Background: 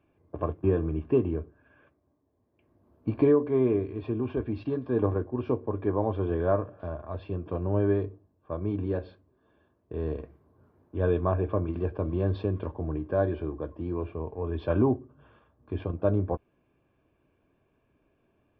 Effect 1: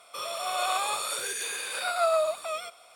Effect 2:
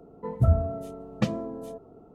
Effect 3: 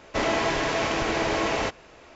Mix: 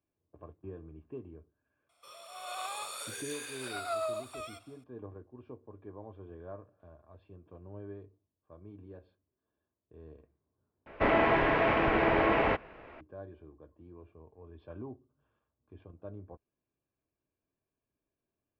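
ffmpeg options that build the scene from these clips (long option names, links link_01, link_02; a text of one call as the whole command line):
ffmpeg -i bed.wav -i cue0.wav -i cue1.wav -i cue2.wav -filter_complex "[0:a]volume=-20dB[link_01];[1:a]dynaudnorm=framelen=400:gausssize=3:maxgain=8.5dB[link_02];[3:a]lowpass=frequency=2500:width=0.5412,lowpass=frequency=2500:width=1.3066[link_03];[link_01]asplit=2[link_04][link_05];[link_04]atrim=end=10.864[link_06];[link_03]atrim=end=2.15,asetpts=PTS-STARTPTS,volume=-0.5dB[link_07];[link_05]atrim=start=13.006[link_08];[link_02]atrim=end=2.95,asetpts=PTS-STARTPTS,volume=-18dB,afade=type=in:duration=0.004:curve=hsin,afade=type=out:start_time=2.946:duration=0.004:curve=hsin,adelay=1890[link_09];[link_06][link_07]acrossfade=duration=0.004:curve1=hsin:curve2=hsin[link_10];[link_10][link_08]acrossfade=duration=0.004:curve1=hsin:curve2=hsin[link_11];[link_11][link_09]amix=inputs=2:normalize=0" out.wav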